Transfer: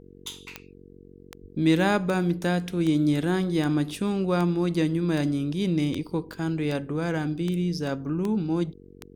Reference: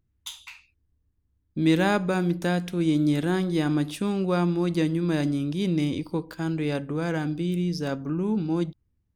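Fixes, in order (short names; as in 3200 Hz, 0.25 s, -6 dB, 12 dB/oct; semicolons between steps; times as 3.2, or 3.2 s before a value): de-click; de-hum 46.6 Hz, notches 10; 1.41–1.53 HPF 140 Hz 24 dB/oct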